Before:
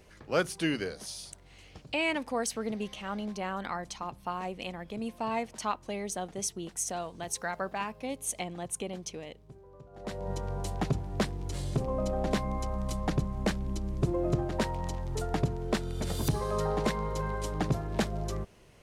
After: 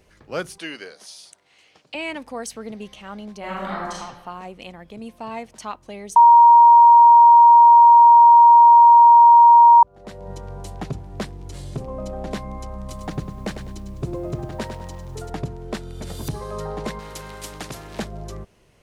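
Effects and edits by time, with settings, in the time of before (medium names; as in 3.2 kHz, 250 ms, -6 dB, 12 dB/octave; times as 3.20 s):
0.58–1.95 s: frequency weighting A
3.39–3.99 s: reverb throw, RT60 1.2 s, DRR -6 dB
6.16–9.83 s: bleep 941 Hz -6 dBFS
12.79–15.30 s: bit-crushed delay 101 ms, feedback 35%, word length 9-bit, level -8 dB
16.99–17.99 s: spectrum-flattening compressor 2:1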